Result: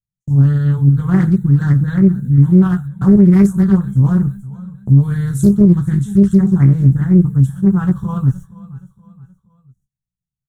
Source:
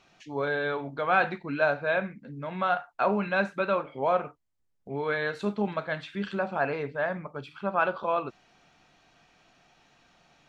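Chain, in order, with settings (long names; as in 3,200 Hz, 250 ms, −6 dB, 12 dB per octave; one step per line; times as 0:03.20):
in parallel at −2 dB: output level in coarse steps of 13 dB
on the sum: inverse Chebyshev band-stop filter 300–5,000 Hz, stop band 40 dB
noise gate −60 dBFS, range −52 dB
double-tracking delay 16 ms −5 dB
on a send: repeating echo 472 ms, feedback 43%, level −19 dB
on the sum: boost into a limiter +33 dB
highs frequency-modulated by the lows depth 0.46 ms
level −1 dB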